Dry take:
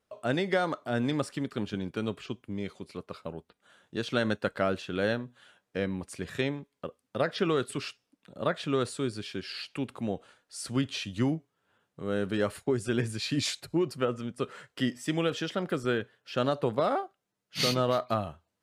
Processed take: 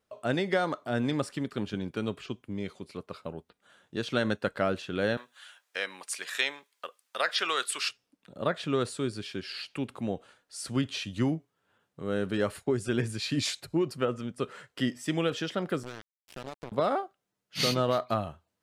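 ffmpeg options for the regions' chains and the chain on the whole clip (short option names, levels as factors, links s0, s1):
-filter_complex "[0:a]asettb=1/sr,asplit=3[s0][s1][s2];[s0]atrim=end=5.174[s3];[s1]atrim=start=5.17:end=7.89,asetpts=PTS-STARTPTS,afade=t=in:d=0.004:c=qsin,afade=t=out:st=2.716:d=0.004:c=qsin,highpass=1000,highshelf=f=3000:g=5.5,acontrast=35[s4];[s2]atrim=start=7.886[s5];[s3][s4]acrossfade=d=0.004:c1=hsin:c2=qsin[s6];[s6][s5]acrossfade=d=0.004:c1=qsin:c2=hsin,asettb=1/sr,asplit=3[s7][s8][s9];[s7]atrim=end=15.834[s10];[s8]atrim=start=15.83:end=16.72,asetpts=PTS-STARTPTS,afade=t=in:d=0.004:c=qsin,afade=t=out:st=0.886:d=0.004:c=qsin,highshelf=f=11000:g=2,acompressor=threshold=0.00708:ratio=2.5:attack=3.2:release=140:knee=1:detection=peak,acrusher=bits=5:mix=0:aa=0.5[s11];[s9]atrim=start=16.716[s12];[s10][s11]acrossfade=d=0.004:c1=hsin:c2=qsin[s13];[s13][s12]acrossfade=d=0.004:c1=qsin:c2=hsin"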